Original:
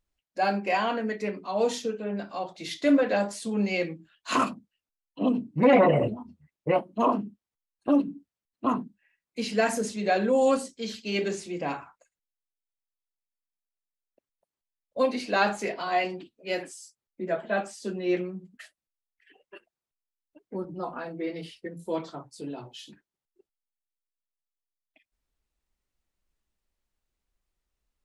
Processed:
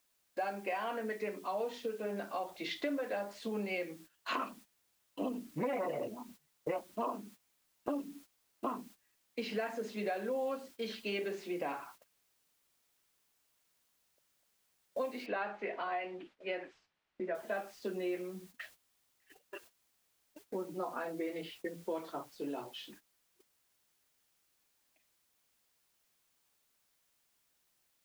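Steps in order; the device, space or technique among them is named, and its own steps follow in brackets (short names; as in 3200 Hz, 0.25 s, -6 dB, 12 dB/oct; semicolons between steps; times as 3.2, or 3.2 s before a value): baby monitor (BPF 300–3000 Hz; compressor 6:1, threshold -36 dBFS, peak gain reduction 19 dB; white noise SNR 21 dB; gate -57 dBFS, range -14 dB); 15.26–17.35 Chebyshev low-pass 2600 Hz, order 2; gain +1.5 dB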